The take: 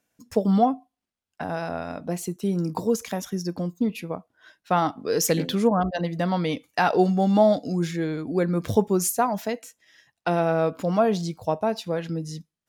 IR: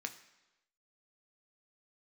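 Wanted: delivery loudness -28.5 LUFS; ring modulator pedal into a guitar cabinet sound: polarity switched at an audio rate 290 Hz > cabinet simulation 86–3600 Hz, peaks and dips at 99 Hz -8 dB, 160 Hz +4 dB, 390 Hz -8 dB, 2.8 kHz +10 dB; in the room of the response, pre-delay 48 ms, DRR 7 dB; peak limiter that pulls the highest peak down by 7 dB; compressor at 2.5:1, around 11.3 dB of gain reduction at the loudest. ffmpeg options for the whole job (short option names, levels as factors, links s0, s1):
-filter_complex "[0:a]acompressor=threshold=0.0282:ratio=2.5,alimiter=limit=0.0708:level=0:latency=1,asplit=2[s0][s1];[1:a]atrim=start_sample=2205,adelay=48[s2];[s1][s2]afir=irnorm=-1:irlink=0,volume=0.473[s3];[s0][s3]amix=inputs=2:normalize=0,aeval=exprs='val(0)*sgn(sin(2*PI*290*n/s))':c=same,highpass=86,equalizer=f=99:t=q:w=4:g=-8,equalizer=f=160:t=q:w=4:g=4,equalizer=f=390:t=q:w=4:g=-8,equalizer=f=2800:t=q:w=4:g=10,lowpass=f=3600:w=0.5412,lowpass=f=3600:w=1.3066,volume=1.78"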